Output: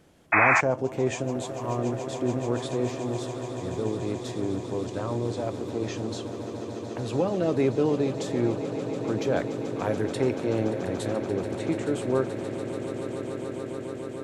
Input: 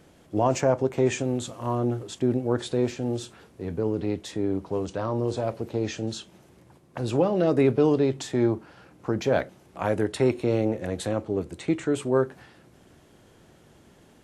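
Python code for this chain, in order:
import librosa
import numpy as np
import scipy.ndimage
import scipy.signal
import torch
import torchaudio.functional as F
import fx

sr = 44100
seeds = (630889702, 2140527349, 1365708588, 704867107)

y = fx.echo_swell(x, sr, ms=144, loudest=8, wet_db=-14.5)
y = fx.spec_paint(y, sr, seeds[0], shape='noise', start_s=0.32, length_s=0.29, low_hz=630.0, high_hz=2600.0, level_db=-16.0)
y = y * librosa.db_to_amplitude(-3.5)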